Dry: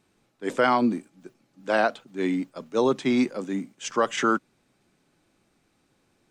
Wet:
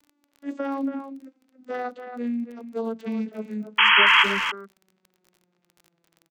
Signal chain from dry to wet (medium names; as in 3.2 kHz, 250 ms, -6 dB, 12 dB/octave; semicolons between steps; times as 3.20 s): vocoder on a note that slides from D4, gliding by -10 st; high-pass 190 Hz; compression, threshold -25 dBFS, peak gain reduction 10 dB; crackle 26 per s -39 dBFS; painted sound noise, 3.78–4.24 s, 860–3300 Hz -16 dBFS; speakerphone echo 280 ms, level -8 dB